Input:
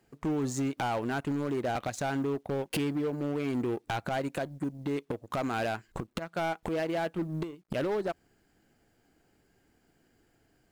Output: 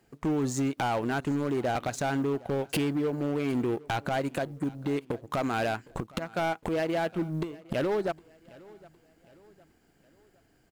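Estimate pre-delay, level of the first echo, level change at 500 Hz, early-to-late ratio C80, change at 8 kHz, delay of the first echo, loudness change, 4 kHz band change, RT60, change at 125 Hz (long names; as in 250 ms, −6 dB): no reverb audible, −22.5 dB, +2.5 dB, no reverb audible, +2.5 dB, 761 ms, +2.5 dB, +2.5 dB, no reverb audible, +2.5 dB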